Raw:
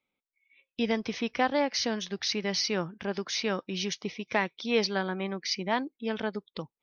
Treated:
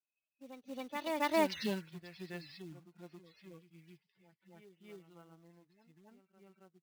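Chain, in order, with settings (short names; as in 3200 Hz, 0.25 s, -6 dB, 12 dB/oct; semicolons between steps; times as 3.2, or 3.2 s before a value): median-filter separation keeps harmonic; Doppler pass-by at 1.52, 47 m/s, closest 6.5 m; dynamic EQ 3700 Hz, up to +6 dB, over -59 dBFS, Q 0.94; short-mantissa float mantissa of 2-bit; reverse echo 0.273 s -7.5 dB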